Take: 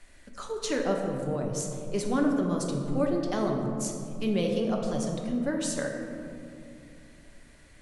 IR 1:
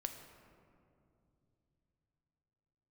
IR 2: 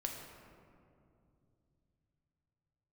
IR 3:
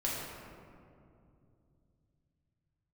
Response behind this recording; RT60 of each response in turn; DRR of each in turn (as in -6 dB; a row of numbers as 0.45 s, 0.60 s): 2; 2.7 s, 2.6 s, 2.6 s; 5.5 dB, 0.5 dB, -6.0 dB